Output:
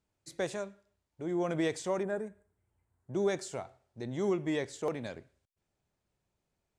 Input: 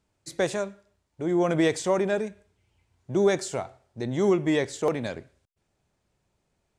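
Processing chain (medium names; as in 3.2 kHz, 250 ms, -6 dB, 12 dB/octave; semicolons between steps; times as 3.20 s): 2.03–3.14 s: high-order bell 3.8 kHz -13 dB; trim -8.5 dB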